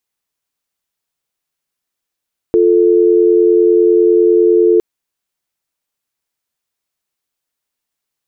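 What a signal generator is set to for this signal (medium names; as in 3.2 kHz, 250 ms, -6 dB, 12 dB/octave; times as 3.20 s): call progress tone dial tone, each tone -9.5 dBFS 2.26 s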